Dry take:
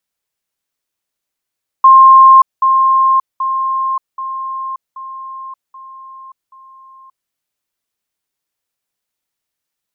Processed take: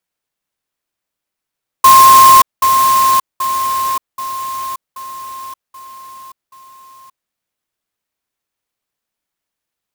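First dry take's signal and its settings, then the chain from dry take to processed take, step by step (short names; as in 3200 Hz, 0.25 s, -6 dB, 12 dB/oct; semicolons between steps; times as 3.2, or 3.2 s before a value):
level ladder 1060 Hz -1.5 dBFS, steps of -6 dB, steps 7, 0.58 s 0.20 s
clock jitter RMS 0.051 ms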